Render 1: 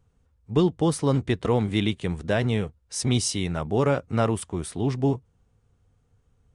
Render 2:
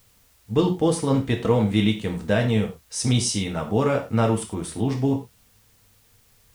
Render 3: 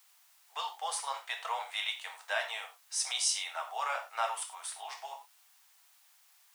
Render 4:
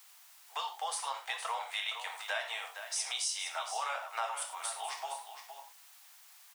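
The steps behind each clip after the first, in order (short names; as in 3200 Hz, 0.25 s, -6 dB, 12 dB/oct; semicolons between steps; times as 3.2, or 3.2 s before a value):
non-linear reverb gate 0.13 s falling, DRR 2 dB; requantised 10-bit, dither triangular
steep high-pass 710 Hz 48 dB/oct; gain -4 dB
compressor 2.5:1, threshold -43 dBFS, peak gain reduction 11.5 dB; on a send: echo 0.465 s -9.5 dB; on the sum: gain +6 dB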